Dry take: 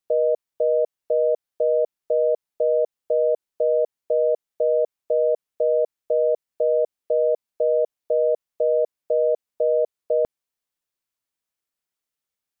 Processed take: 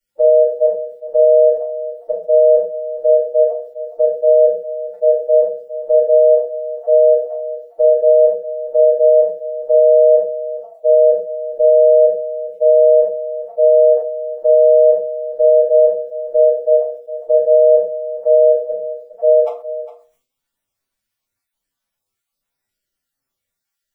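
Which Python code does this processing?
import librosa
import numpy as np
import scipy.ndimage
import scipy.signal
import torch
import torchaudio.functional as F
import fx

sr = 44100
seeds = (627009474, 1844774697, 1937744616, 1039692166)

y = fx.spec_dropout(x, sr, seeds[0], share_pct=24)
y = fx.stretch_vocoder(y, sr, factor=1.9)
y = y + 10.0 ** (-14.0 / 20.0) * np.pad(y, (int(408 * sr / 1000.0), 0))[:len(y)]
y = fx.room_shoebox(y, sr, seeds[1], volume_m3=150.0, walls='furnished', distance_m=4.6)
y = fx.sustainer(y, sr, db_per_s=120.0)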